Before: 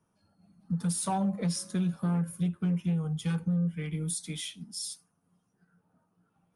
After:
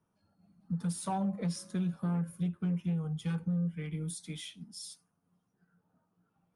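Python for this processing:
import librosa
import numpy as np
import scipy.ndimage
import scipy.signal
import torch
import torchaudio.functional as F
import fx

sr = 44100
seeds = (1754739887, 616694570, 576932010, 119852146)

y = fx.high_shelf(x, sr, hz=4500.0, db=-6.5)
y = y * librosa.db_to_amplitude(-3.5)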